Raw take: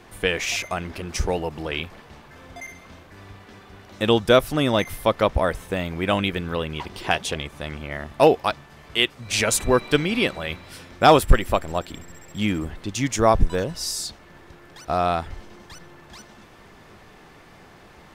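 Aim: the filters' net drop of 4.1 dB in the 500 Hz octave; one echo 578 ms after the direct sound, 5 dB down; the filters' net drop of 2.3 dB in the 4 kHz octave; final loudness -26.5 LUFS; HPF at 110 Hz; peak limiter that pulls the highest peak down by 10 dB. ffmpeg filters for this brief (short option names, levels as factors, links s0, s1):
-af "highpass=110,equalizer=f=500:t=o:g=-5,equalizer=f=4000:t=o:g=-3,alimiter=limit=0.2:level=0:latency=1,aecho=1:1:578:0.562,volume=1.19"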